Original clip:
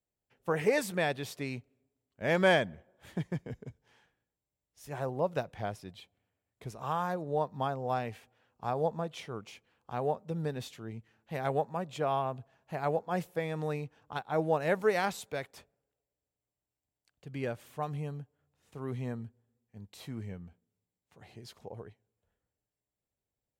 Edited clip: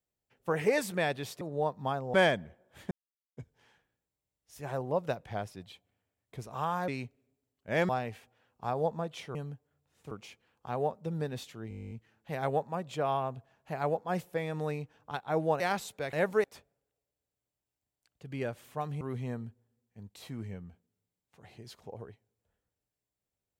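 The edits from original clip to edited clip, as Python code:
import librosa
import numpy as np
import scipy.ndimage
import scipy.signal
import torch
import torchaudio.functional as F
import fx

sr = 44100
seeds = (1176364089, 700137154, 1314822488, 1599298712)

y = fx.edit(x, sr, fx.swap(start_s=1.41, length_s=1.01, other_s=7.16, other_length_s=0.73),
    fx.silence(start_s=3.19, length_s=0.46),
    fx.stutter(start_s=10.93, slice_s=0.02, count=12),
    fx.move(start_s=14.62, length_s=0.31, to_s=15.46),
    fx.move(start_s=18.03, length_s=0.76, to_s=9.35), tone=tone)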